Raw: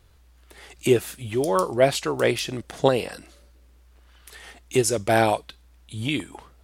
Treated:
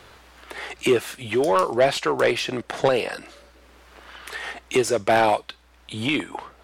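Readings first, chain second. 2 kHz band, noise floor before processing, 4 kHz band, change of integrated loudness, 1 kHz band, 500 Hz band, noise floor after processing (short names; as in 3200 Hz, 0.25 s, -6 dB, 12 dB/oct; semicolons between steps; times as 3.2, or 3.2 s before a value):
+3.5 dB, -55 dBFS, +2.0 dB, +1.0 dB, +3.0 dB, +1.0 dB, -54 dBFS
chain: overdrive pedal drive 18 dB, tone 2300 Hz, clips at -2.5 dBFS; three-band squash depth 40%; gain -3.5 dB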